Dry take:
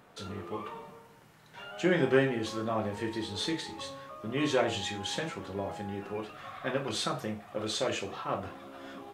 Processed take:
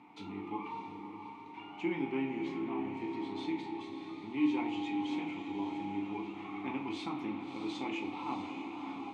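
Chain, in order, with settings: bell 360 Hz -5.5 dB 1.5 oct; in parallel at +1 dB: compressor, threshold -44 dBFS, peak gain reduction 20 dB; on the sum: vowel filter u; vocal rider within 5 dB 2 s; on a send: diffused feedback echo 0.624 s, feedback 53%, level -8 dB; on the sum: spring tank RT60 3.7 s, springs 30/39 ms, chirp 75 ms, DRR 7 dB; gain +5 dB

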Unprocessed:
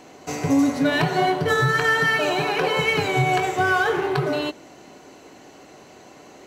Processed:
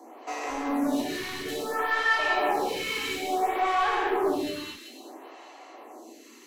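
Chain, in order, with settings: bell 12000 Hz +8.5 dB 0.55 oct; notch 1500 Hz, Q 8.8; limiter -15.5 dBFS, peak gain reduction 8 dB; rippled Chebyshev high-pass 230 Hz, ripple 6 dB; hard clip -26.5 dBFS, distortion -11 dB; thin delay 0.385 s, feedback 32%, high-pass 2000 Hz, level -7 dB; non-linear reverb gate 0.28 s flat, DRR -2.5 dB; photocell phaser 0.59 Hz; gain +1 dB

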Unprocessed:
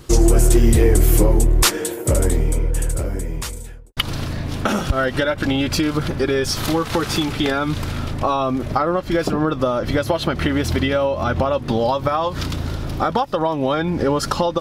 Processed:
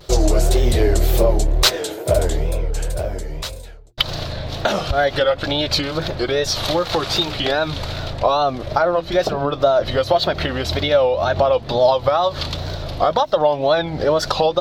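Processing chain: notches 60/120/180/240/300/360 Hz; wow and flutter 150 cents; fifteen-band EQ 250 Hz -7 dB, 630 Hz +10 dB, 4000 Hz +11 dB, 10000 Hz -8 dB; gain -2 dB

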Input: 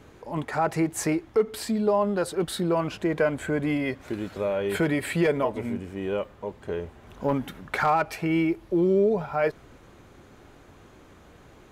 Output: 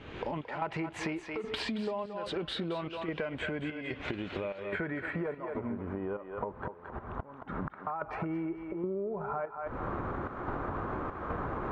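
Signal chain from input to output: recorder AGC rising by 49 dB/s; step gate "xx.xxx.x" 73 bpm -12 dB; low-pass sweep 3000 Hz -> 1200 Hz, 4.3–5.24; 6.5–7.87 flipped gate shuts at -19 dBFS, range -27 dB; thinning echo 0.223 s, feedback 25%, high-pass 550 Hz, level -8.5 dB; compressor 6:1, threshold -33 dBFS, peak gain reduction 15.5 dB; 0.62–1.89 bell 970 Hz +6 dB 0.33 oct

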